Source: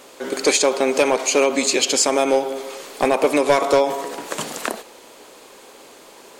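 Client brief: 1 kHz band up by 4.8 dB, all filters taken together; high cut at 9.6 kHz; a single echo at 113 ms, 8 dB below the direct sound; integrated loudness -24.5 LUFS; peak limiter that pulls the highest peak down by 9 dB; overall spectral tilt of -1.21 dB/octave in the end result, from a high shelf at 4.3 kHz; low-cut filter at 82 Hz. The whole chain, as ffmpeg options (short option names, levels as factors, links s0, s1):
-af "highpass=82,lowpass=9600,equalizer=f=1000:t=o:g=6,highshelf=f=4300:g=3,alimiter=limit=0.299:level=0:latency=1,aecho=1:1:113:0.398,volume=0.668"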